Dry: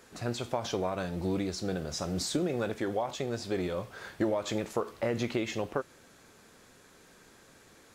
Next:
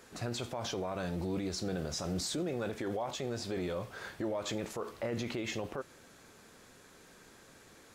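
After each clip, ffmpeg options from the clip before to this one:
ffmpeg -i in.wav -af "alimiter=level_in=3.5dB:limit=-24dB:level=0:latency=1:release=23,volume=-3.5dB" out.wav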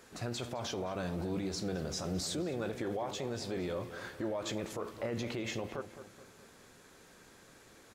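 ffmpeg -i in.wav -filter_complex "[0:a]asplit=2[link_01][link_02];[link_02]adelay=213,lowpass=frequency=2000:poles=1,volume=-11dB,asplit=2[link_03][link_04];[link_04]adelay=213,lowpass=frequency=2000:poles=1,volume=0.46,asplit=2[link_05][link_06];[link_06]adelay=213,lowpass=frequency=2000:poles=1,volume=0.46,asplit=2[link_07][link_08];[link_08]adelay=213,lowpass=frequency=2000:poles=1,volume=0.46,asplit=2[link_09][link_10];[link_10]adelay=213,lowpass=frequency=2000:poles=1,volume=0.46[link_11];[link_01][link_03][link_05][link_07][link_09][link_11]amix=inputs=6:normalize=0,volume=-1dB" out.wav

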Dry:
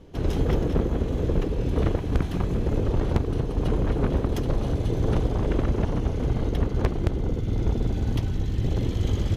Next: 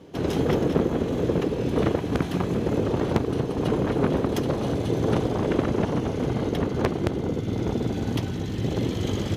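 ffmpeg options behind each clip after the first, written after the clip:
ffmpeg -i in.wav -af "highpass=150,volume=4.5dB" out.wav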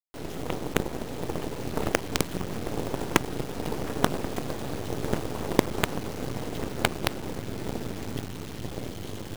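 ffmpeg -i in.wav -af "acrusher=bits=3:dc=4:mix=0:aa=0.000001,aeval=exprs='0.596*(cos(1*acos(clip(val(0)/0.596,-1,1)))-cos(1*PI/2))+0.0531*(cos(5*acos(clip(val(0)/0.596,-1,1)))-cos(5*PI/2))+0.0668*(cos(7*acos(clip(val(0)/0.596,-1,1)))-cos(7*PI/2))+0.0422*(cos(8*acos(clip(val(0)/0.596,-1,1)))-cos(8*PI/2))':channel_layout=same,dynaudnorm=framelen=220:gausssize=11:maxgain=11.5dB,volume=-1dB" out.wav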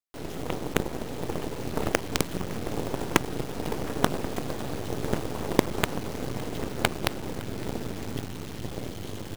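ffmpeg -i in.wav -af "aecho=1:1:561:0.0891" out.wav

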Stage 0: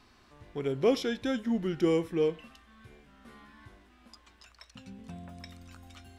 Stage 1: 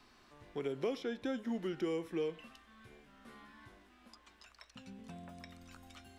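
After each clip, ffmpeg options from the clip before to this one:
ffmpeg -i in.wav -filter_complex "[0:a]equalizer=frequency=70:width=0.68:gain=-7.5,acrossover=split=220|1200|3000[link_01][link_02][link_03][link_04];[link_01]acompressor=threshold=-49dB:ratio=4[link_05];[link_02]acompressor=threshold=-33dB:ratio=4[link_06];[link_03]acompressor=threshold=-50dB:ratio=4[link_07];[link_04]acompressor=threshold=-56dB:ratio=4[link_08];[link_05][link_06][link_07][link_08]amix=inputs=4:normalize=0,volume=-2dB" out.wav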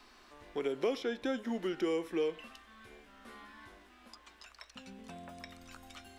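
ffmpeg -i in.wav -af "equalizer=frequency=130:width_type=o:width=1.2:gain=-12,volume=5dB" out.wav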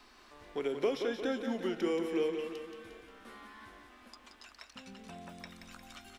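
ffmpeg -i in.wav -af "aecho=1:1:177|354|531|708|885|1062:0.447|0.232|0.121|0.0628|0.0327|0.017" out.wav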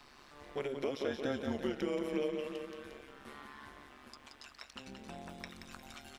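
ffmpeg -i in.wav -af "alimiter=level_in=2.5dB:limit=-24dB:level=0:latency=1:release=393,volume=-2.5dB,tremolo=f=140:d=0.788,volume=4dB" out.wav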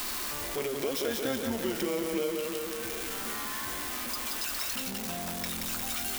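ffmpeg -i in.wav -af "aeval=exprs='val(0)+0.5*0.015*sgn(val(0))':channel_layout=same,aemphasis=mode=production:type=50kf,volume=1.5dB" out.wav

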